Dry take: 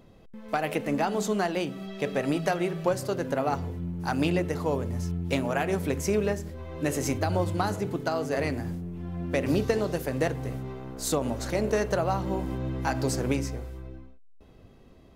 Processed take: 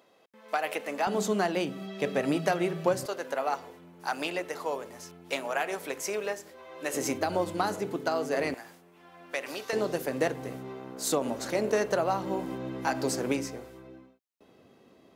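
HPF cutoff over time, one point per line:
550 Hz
from 1.07 s 160 Hz
from 3.06 s 570 Hz
from 6.94 s 250 Hz
from 8.54 s 820 Hz
from 9.73 s 230 Hz

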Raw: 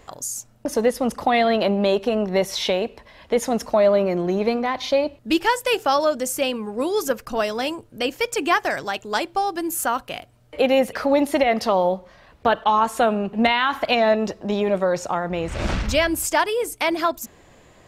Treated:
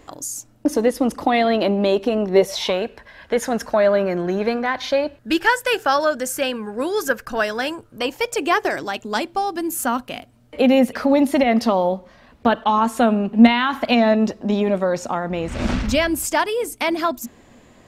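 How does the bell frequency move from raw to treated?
bell +12.5 dB 0.35 oct
2.3 s 300 Hz
2.82 s 1600 Hz
7.75 s 1600 Hz
8.98 s 240 Hz

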